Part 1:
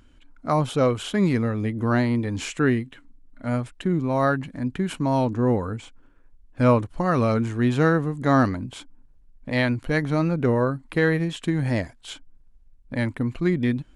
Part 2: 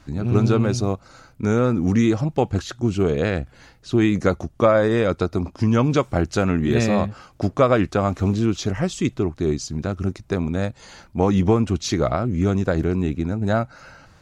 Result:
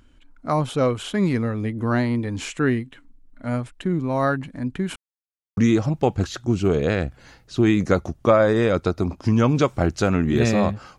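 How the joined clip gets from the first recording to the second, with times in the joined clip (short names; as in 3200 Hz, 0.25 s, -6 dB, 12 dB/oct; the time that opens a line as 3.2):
part 1
4.96–5.57 mute
5.57 switch to part 2 from 1.92 s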